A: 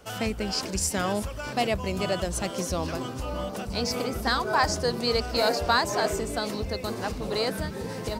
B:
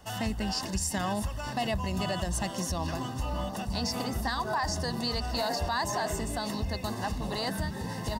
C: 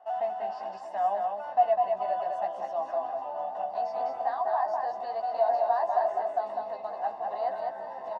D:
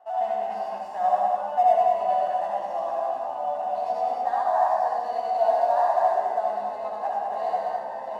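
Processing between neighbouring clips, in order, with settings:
notch 2400 Hz, Q 7.6; comb 1.1 ms, depth 59%; limiter -19 dBFS, peak gain reduction 10 dB; gain -2 dB
ladder band-pass 740 Hz, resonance 80%; doubler 15 ms -5 dB; echo 0.202 s -4 dB; gain +6 dB
median filter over 9 samples; reverb RT60 0.75 s, pre-delay 58 ms, DRR -3 dB

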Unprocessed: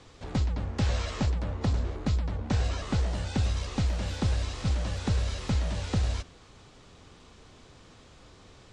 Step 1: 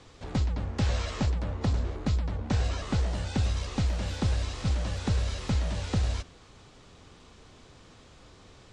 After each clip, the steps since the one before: nothing audible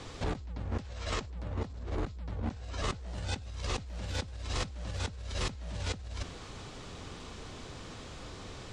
negative-ratio compressor -38 dBFS, ratio -1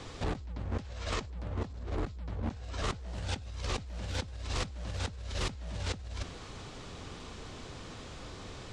Doppler distortion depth 0.31 ms

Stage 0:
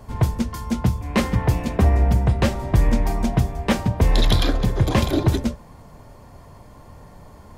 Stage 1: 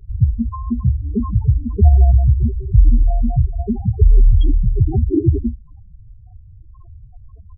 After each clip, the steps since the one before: comb 2.7 ms, depth 37%; wow and flutter 23 cents; loudest bins only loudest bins 4; gain +5.5 dB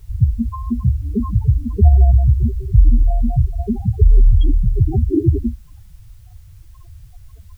requantised 10-bit, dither triangular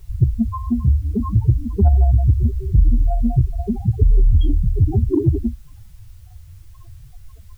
flange 0.55 Hz, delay 5.2 ms, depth 8.6 ms, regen +50%; soft clip -8.5 dBFS, distortion -21 dB; gain +4.5 dB

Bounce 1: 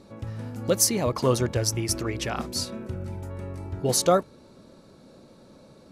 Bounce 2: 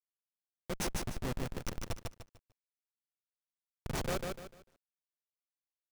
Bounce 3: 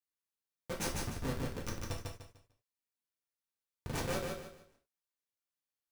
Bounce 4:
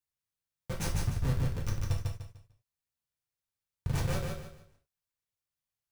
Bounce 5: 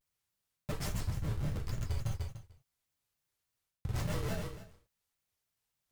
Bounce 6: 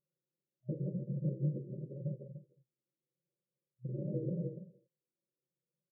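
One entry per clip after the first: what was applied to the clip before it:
low-pass opened by the level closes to 1200 Hz, open at -21 dBFS; Schmitt trigger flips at -18 dBFS; lo-fi delay 0.149 s, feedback 35%, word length 10-bit, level -3 dB; gain -6.5 dB
non-linear reverb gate 0.12 s falling, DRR -1 dB; gain -3.5 dB
resonant low shelf 180 Hz +9.5 dB, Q 1.5
reverse; compressor 6:1, threshold -38 dBFS, peak gain reduction 13.5 dB; reverse; shaped vibrato square 3.5 Hz, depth 250 cents; gain +6 dB
FFT band-pass 120–620 Hz; comb 5.7 ms, depth 93%; flange 0.85 Hz, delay 1.6 ms, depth 1.5 ms, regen -52%; gain +5.5 dB

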